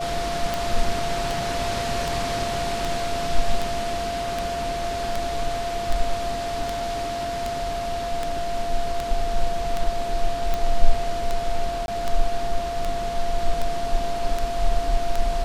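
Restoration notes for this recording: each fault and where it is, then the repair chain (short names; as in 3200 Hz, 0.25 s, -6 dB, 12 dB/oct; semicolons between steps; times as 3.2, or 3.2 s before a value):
tick 78 rpm
tone 690 Hz -26 dBFS
11.86–11.88 gap 21 ms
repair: de-click; notch 690 Hz, Q 30; interpolate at 11.86, 21 ms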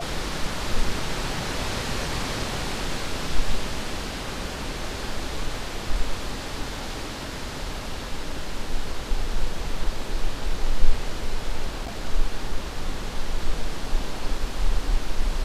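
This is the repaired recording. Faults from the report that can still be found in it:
none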